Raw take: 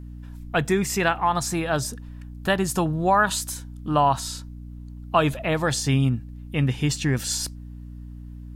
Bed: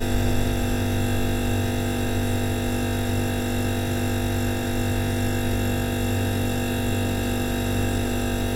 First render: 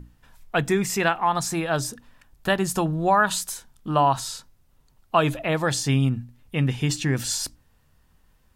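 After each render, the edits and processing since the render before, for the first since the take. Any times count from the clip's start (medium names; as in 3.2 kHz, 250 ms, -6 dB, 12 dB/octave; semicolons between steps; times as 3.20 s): hum notches 60/120/180/240/300 Hz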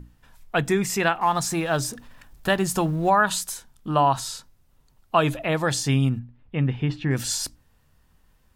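1.21–3.10 s: companding laws mixed up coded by mu; 6.19–7.11 s: distance through air 370 m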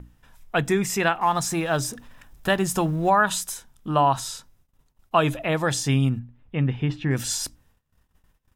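band-stop 4.4 kHz, Q 12; gate -58 dBFS, range -18 dB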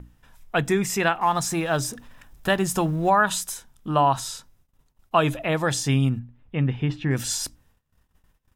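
no audible change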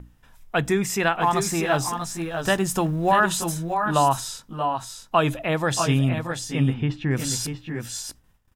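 multi-tap echo 630/648 ms -11/-7 dB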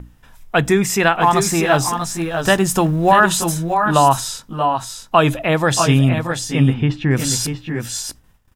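trim +7 dB; peak limiter -1 dBFS, peak gain reduction 1 dB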